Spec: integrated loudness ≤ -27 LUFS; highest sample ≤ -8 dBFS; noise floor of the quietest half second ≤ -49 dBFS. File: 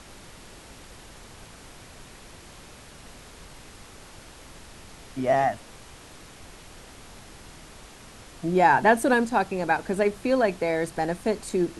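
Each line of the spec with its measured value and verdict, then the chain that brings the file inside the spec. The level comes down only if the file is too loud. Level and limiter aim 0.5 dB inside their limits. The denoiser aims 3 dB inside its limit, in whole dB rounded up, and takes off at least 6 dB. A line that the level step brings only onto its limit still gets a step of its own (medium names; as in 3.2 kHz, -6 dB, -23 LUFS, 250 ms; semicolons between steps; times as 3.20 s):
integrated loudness -24.0 LUFS: fail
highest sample -7.0 dBFS: fail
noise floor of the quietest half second -46 dBFS: fail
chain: trim -3.5 dB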